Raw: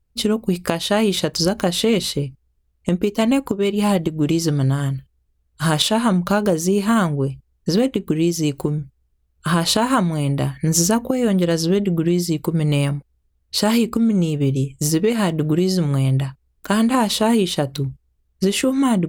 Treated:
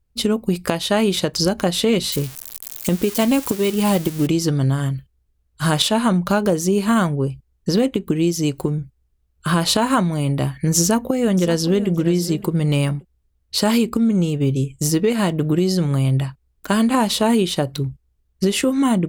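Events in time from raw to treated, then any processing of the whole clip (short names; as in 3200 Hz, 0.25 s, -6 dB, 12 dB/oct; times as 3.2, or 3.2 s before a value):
2.12–4.27 switching spikes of -17.5 dBFS
10.8–11.9 echo throw 0.57 s, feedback 15%, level -14 dB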